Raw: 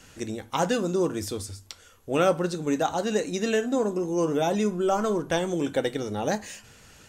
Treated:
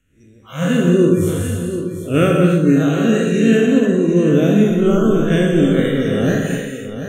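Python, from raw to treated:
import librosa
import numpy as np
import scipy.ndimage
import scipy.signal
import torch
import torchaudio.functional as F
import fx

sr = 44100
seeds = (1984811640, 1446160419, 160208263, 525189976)

p1 = fx.spec_blur(x, sr, span_ms=117.0)
p2 = fx.noise_reduce_blind(p1, sr, reduce_db=27)
p3 = fx.rider(p2, sr, range_db=10, speed_s=0.5)
p4 = p2 + F.gain(torch.from_numpy(p3), 1.0).numpy()
p5 = fx.low_shelf(p4, sr, hz=170.0, db=11.0)
p6 = fx.fixed_phaser(p5, sr, hz=2100.0, stages=4)
p7 = p6 + fx.echo_single(p6, sr, ms=740, db=-10.0, dry=0)
p8 = fx.rev_gated(p7, sr, seeds[0], gate_ms=330, shape='flat', drr_db=1.5)
p9 = fx.attack_slew(p8, sr, db_per_s=180.0)
y = F.gain(torch.from_numpy(p9), 5.5).numpy()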